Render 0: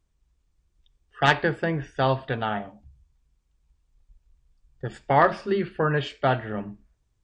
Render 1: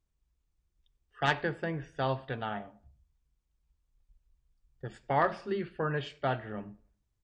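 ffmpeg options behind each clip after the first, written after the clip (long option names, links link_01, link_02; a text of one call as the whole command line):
ffmpeg -i in.wav -filter_complex "[0:a]asplit=2[link_01][link_02];[link_02]adelay=98,lowpass=frequency=1600:poles=1,volume=-23.5dB,asplit=2[link_03][link_04];[link_04]adelay=98,lowpass=frequency=1600:poles=1,volume=0.4,asplit=2[link_05][link_06];[link_06]adelay=98,lowpass=frequency=1600:poles=1,volume=0.4[link_07];[link_01][link_03][link_05][link_07]amix=inputs=4:normalize=0,volume=-8.5dB" out.wav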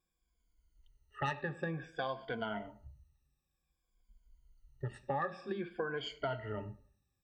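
ffmpeg -i in.wav -af "afftfilt=real='re*pow(10,20/40*sin(2*PI*(1.8*log(max(b,1)*sr/1024/100)/log(2)-(-0.54)*(pts-256)/sr)))':imag='im*pow(10,20/40*sin(2*PI*(1.8*log(max(b,1)*sr/1024/100)/log(2)-(-0.54)*(pts-256)/sr)))':win_size=1024:overlap=0.75,acompressor=threshold=-33dB:ratio=4,volume=-2dB" out.wav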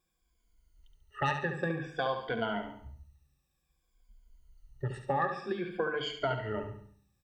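ffmpeg -i in.wav -af "bandreject=frequency=50:width_type=h:width=6,bandreject=frequency=100:width_type=h:width=6,bandreject=frequency=150:width_type=h:width=6,bandreject=frequency=200:width_type=h:width=6,bandreject=frequency=250:width_type=h:width=6,bandreject=frequency=300:width_type=h:width=6,aecho=1:1:70|140|210|280|350:0.398|0.167|0.0702|0.0295|0.0124,volume=5dB" out.wav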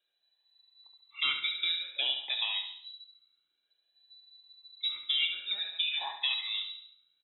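ffmpeg -i in.wav -filter_complex "[0:a]asplit=2[link_01][link_02];[link_02]adelay=24,volume=-12dB[link_03];[link_01][link_03]amix=inputs=2:normalize=0,lowpass=frequency=3400:width_type=q:width=0.5098,lowpass=frequency=3400:width_type=q:width=0.6013,lowpass=frequency=3400:width_type=q:width=0.9,lowpass=frequency=3400:width_type=q:width=2.563,afreqshift=-4000" out.wav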